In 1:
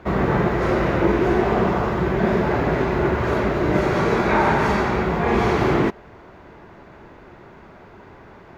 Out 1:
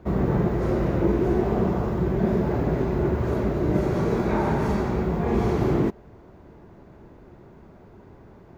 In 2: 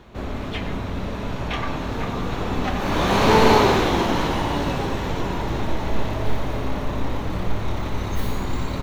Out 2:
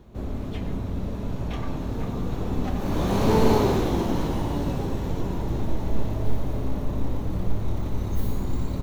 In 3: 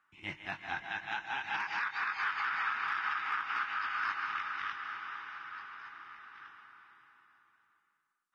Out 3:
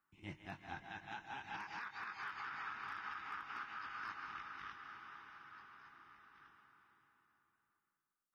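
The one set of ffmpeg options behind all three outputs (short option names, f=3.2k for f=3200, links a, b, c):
-af "equalizer=f=2.1k:w=0.33:g=-13.5"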